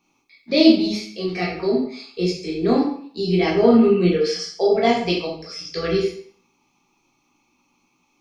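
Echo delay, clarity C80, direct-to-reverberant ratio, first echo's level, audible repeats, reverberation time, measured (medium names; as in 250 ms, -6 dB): no echo, 8.0 dB, -4.0 dB, no echo, no echo, 0.55 s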